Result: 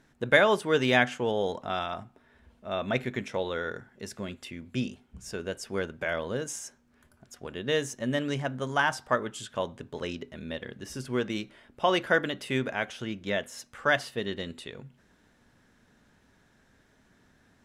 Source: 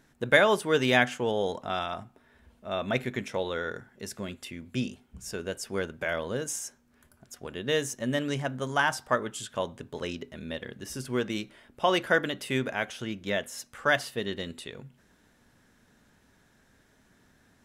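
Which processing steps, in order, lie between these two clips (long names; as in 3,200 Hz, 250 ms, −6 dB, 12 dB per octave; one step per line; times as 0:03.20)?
high-shelf EQ 10,000 Hz −11 dB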